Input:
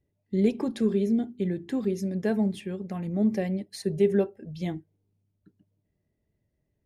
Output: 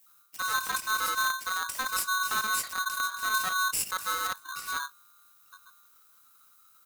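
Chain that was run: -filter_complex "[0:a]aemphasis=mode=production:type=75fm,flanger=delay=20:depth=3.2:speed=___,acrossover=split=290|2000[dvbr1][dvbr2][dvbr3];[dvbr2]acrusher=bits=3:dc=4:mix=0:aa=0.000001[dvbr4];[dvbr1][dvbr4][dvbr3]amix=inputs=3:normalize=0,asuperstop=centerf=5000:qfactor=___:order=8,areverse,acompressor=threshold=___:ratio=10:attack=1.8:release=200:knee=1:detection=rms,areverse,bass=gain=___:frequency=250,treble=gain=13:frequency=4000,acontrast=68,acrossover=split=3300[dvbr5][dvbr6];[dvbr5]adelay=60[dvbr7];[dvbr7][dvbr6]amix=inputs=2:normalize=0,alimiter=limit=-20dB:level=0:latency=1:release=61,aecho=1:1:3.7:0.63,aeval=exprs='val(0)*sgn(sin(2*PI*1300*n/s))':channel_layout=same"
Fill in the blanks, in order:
1.6, 2.9, -36dB, 7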